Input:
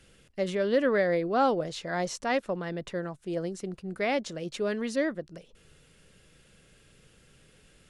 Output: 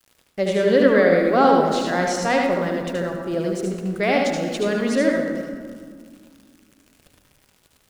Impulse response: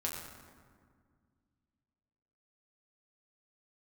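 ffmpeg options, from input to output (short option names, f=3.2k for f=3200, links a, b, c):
-filter_complex "[0:a]aeval=exprs='val(0)*gte(abs(val(0)),0.00282)':c=same,asplit=2[a][b];[1:a]atrim=start_sample=2205,adelay=74[c];[b][c]afir=irnorm=-1:irlink=0,volume=-2.5dB[d];[a][d]amix=inputs=2:normalize=0,volume=6.5dB"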